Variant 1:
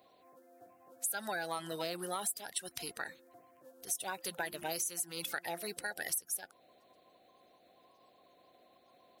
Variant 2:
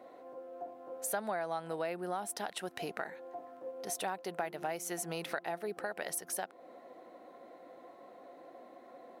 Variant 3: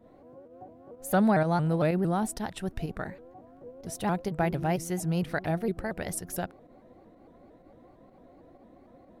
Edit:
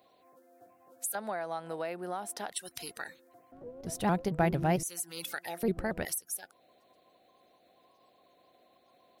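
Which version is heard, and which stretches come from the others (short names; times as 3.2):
1
1.15–2.52 from 2
3.52–4.83 from 3
5.63–6.05 from 3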